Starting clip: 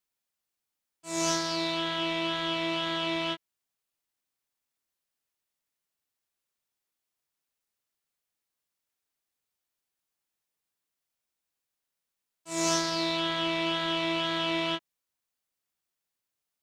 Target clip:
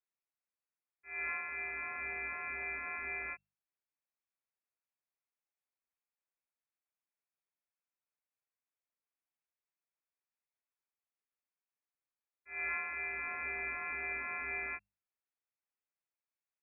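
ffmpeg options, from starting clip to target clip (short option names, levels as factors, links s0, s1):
-af "lowpass=f=2300:t=q:w=0.5098,lowpass=f=2300:t=q:w=0.6013,lowpass=f=2300:t=q:w=0.9,lowpass=f=2300:t=q:w=2.563,afreqshift=-2700,bandreject=f=50:t=h:w=6,bandreject=f=100:t=h:w=6,bandreject=f=150:t=h:w=6,bandreject=f=200:t=h:w=6,volume=0.376"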